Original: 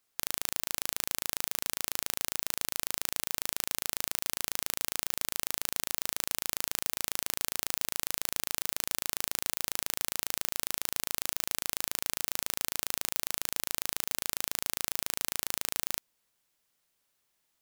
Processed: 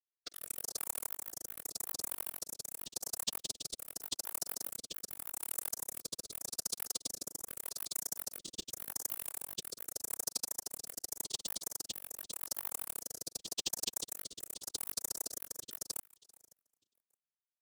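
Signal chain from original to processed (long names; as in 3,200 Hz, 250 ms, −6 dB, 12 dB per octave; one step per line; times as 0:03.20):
Chebyshev high-pass filter 270 Hz, order 3
automatic gain control
elliptic band-stop filter 790–6,200 Hz
low-pass that shuts in the quiet parts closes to 330 Hz, open at −38 dBFS
centre clipping without the shift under −34.5 dBFS
brickwall limiter −14.5 dBFS, peak gain reduction 6.5 dB
random phases in short frames
repeating echo 552 ms, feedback 17%, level −23 dB
granular cloud 100 ms, grains 13 per second, pitch spread up and down by 12 semitones
rotating-speaker cabinet horn 0.85 Hz
level +8.5 dB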